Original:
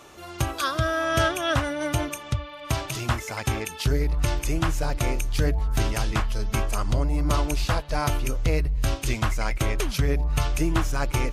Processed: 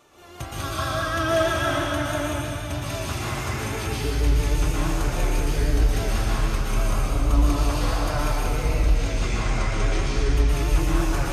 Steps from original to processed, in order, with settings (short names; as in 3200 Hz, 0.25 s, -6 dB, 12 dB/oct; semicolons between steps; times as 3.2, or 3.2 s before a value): 8.48–10.25 LPF 8100 Hz 24 dB/oct; plate-style reverb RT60 3.3 s, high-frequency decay 0.85×, pre-delay 0.105 s, DRR -9.5 dB; vibrato 6.2 Hz 36 cents; gain -9 dB